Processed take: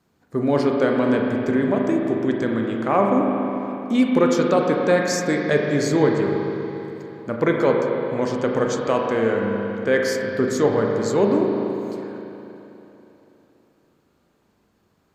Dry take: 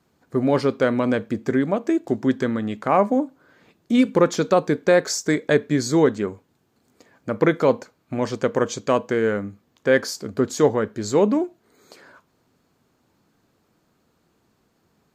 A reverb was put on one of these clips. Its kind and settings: spring tank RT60 3.4 s, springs 35/40 ms, chirp 25 ms, DRR 0 dB; gain -2 dB

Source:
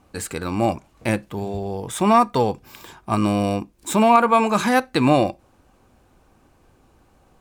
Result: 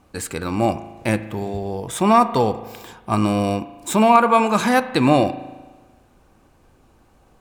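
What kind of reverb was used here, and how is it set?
spring tank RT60 1.3 s, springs 37 ms, chirp 60 ms, DRR 13 dB; gain +1 dB

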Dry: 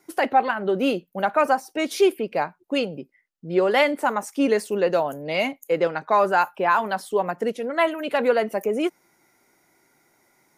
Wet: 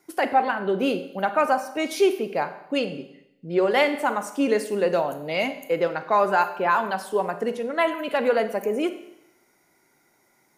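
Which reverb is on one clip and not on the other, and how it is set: Schroeder reverb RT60 0.81 s, combs from 31 ms, DRR 10 dB; gain -1.5 dB

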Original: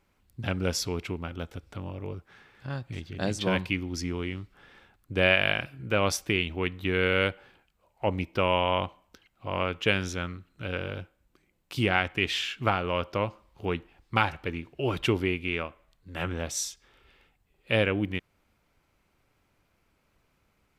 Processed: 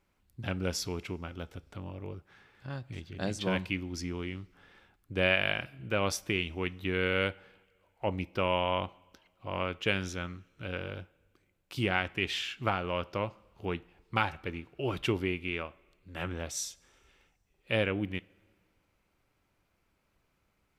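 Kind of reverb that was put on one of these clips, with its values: two-slope reverb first 0.21 s, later 1.8 s, from -19 dB, DRR 17 dB; gain -4.5 dB

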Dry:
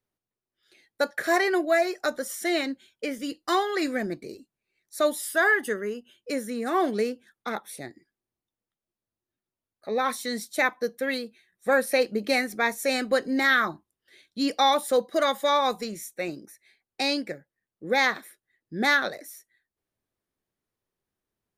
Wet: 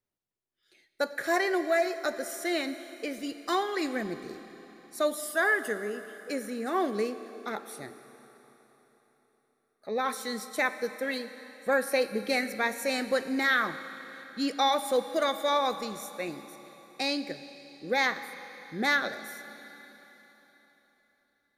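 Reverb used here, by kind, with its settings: Schroeder reverb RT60 3.9 s, combs from 28 ms, DRR 11 dB; gain -4 dB

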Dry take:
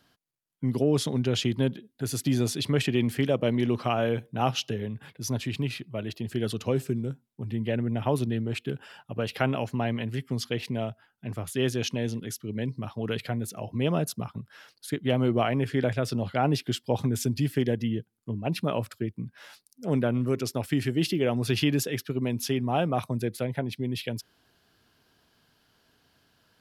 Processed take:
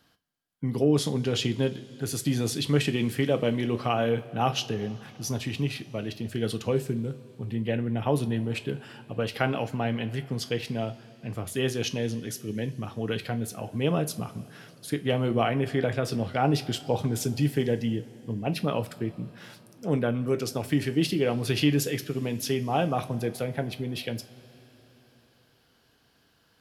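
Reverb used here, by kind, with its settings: two-slope reverb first 0.26 s, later 4.2 s, from -21 dB, DRR 7.5 dB

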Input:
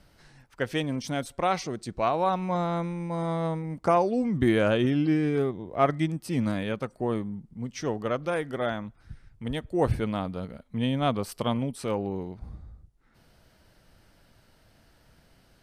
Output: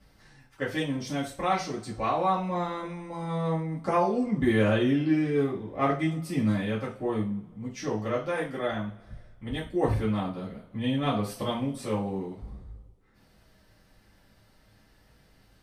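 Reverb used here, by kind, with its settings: two-slope reverb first 0.33 s, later 2 s, from -26 dB, DRR -8 dB; gain -9 dB

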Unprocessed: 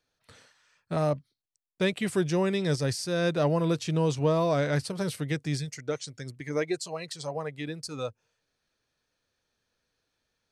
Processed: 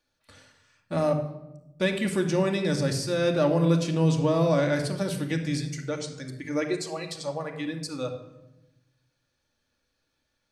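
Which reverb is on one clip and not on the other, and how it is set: shoebox room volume 3300 m³, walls furnished, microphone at 2.4 m

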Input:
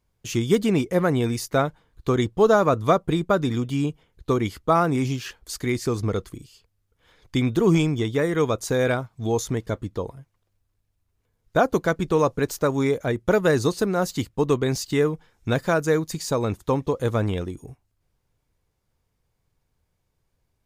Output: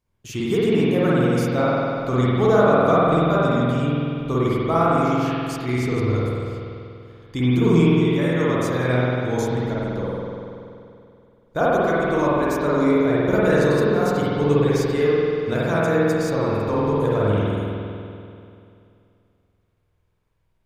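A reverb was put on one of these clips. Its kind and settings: spring tank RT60 2.6 s, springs 48 ms, chirp 50 ms, DRR -8 dB; gain -5.5 dB

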